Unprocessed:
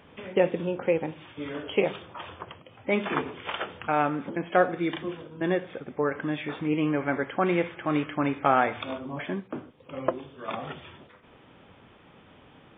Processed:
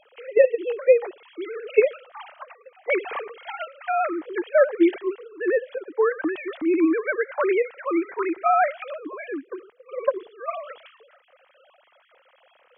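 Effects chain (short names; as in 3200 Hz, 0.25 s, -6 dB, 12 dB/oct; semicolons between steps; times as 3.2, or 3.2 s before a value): sine-wave speech; gain +4.5 dB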